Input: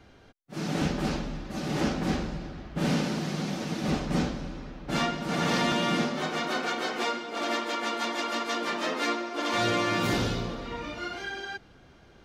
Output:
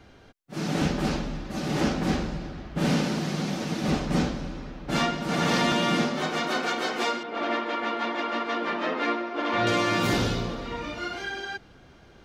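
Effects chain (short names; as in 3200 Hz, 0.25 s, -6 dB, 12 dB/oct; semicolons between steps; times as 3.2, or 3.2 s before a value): 7.23–9.67 LPF 2700 Hz 12 dB/oct; gain +2.5 dB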